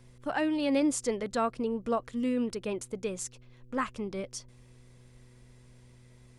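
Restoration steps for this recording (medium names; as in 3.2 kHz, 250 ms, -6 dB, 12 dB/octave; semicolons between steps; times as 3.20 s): de-hum 123.5 Hz, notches 4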